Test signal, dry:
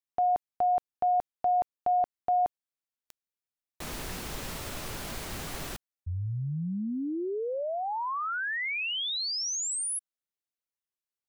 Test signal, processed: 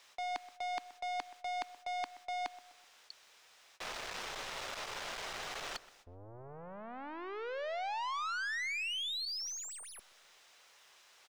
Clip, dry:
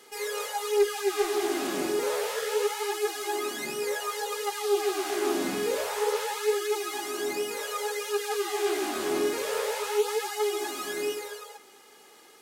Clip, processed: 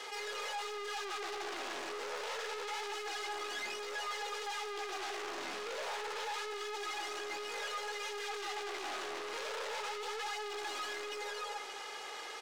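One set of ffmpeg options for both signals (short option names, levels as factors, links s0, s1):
-filter_complex "[0:a]bandreject=f=4400:w=23,aeval=exprs='(tanh(112*val(0)+0.55)-tanh(0.55))/112':c=same,equalizer=f=280:w=2.4:g=-3.5,areverse,acompressor=mode=upward:threshold=0.00562:ratio=2.5:attack=54:release=22:knee=2.83:detection=peak,areverse,aeval=exprs='0.119*(cos(1*acos(clip(val(0)/0.119,-1,1)))-cos(1*PI/2))+0.0531*(cos(3*acos(clip(val(0)/0.119,-1,1)))-cos(3*PI/2))+0.0119*(cos(6*acos(clip(val(0)/0.119,-1,1)))-cos(6*PI/2))+0.0188*(cos(7*acos(clip(val(0)/0.119,-1,1)))-cos(7*PI/2))':c=same,acrossover=split=440 6500:gain=0.126 1 0.1[s0][s1][s2];[s0][s1][s2]amix=inputs=3:normalize=0,asplit=2[s3][s4];[s4]adelay=126,lowpass=f=1700:p=1,volume=0.158,asplit=2[s5][s6];[s6]adelay=126,lowpass=f=1700:p=1,volume=0.45,asplit=2[s7][s8];[s8]adelay=126,lowpass=f=1700:p=1,volume=0.45,asplit=2[s9][s10];[s10]adelay=126,lowpass=f=1700:p=1,volume=0.45[s11];[s3][s5][s7][s9][s11]amix=inputs=5:normalize=0,volume=1.12"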